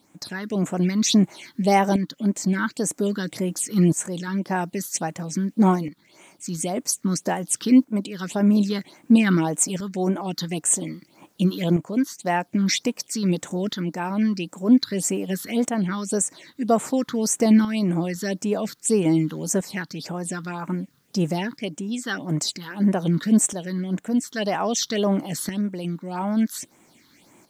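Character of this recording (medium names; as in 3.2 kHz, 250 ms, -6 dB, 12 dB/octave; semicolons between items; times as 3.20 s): phasing stages 6, 1.8 Hz, lowest notch 640–4500 Hz; a quantiser's noise floor 12-bit, dither triangular; tremolo saw up 0.51 Hz, depth 60%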